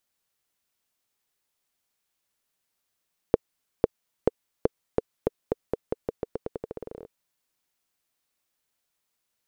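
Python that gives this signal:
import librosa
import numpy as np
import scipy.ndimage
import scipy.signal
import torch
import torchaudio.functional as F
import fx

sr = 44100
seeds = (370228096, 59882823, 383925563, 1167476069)

y = fx.bouncing_ball(sr, first_gap_s=0.5, ratio=0.87, hz=454.0, decay_ms=23.0, level_db=-3.5)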